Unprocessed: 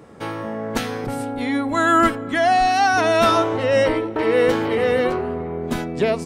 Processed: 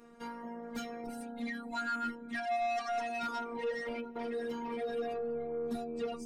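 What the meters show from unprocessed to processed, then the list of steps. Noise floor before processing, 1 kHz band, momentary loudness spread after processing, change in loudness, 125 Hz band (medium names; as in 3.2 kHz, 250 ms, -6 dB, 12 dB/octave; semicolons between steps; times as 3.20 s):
-30 dBFS, -18.0 dB, 9 LU, -18.0 dB, under -25 dB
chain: reverb removal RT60 0.58 s; compression 6:1, threshold -19 dBFS, peak gain reduction 7 dB; inharmonic resonator 76 Hz, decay 0.32 s, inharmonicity 0.008; robot voice 235 Hz; saturation -29 dBFS, distortion -13 dB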